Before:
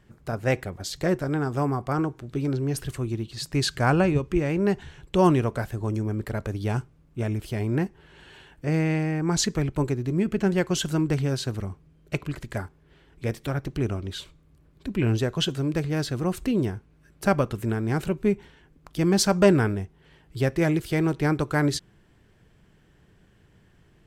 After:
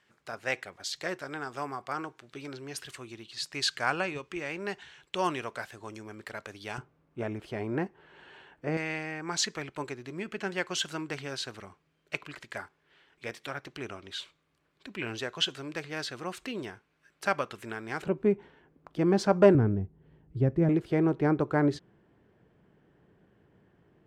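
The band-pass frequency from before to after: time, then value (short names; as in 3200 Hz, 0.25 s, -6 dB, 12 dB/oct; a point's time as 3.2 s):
band-pass, Q 0.54
3000 Hz
from 6.78 s 920 Hz
from 8.77 s 2400 Hz
from 18.02 s 600 Hz
from 19.55 s 160 Hz
from 20.69 s 470 Hz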